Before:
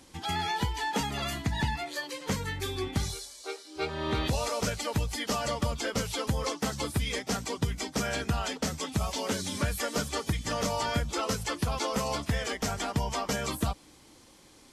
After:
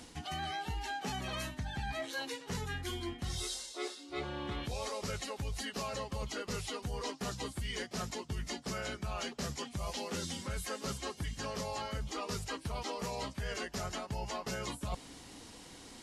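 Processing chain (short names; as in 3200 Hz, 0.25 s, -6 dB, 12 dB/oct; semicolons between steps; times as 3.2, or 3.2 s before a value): reverse; compressor 10:1, threshold -40 dBFS, peak gain reduction 17.5 dB; reverse; speed mistake 48 kHz file played as 44.1 kHz; gain +4.5 dB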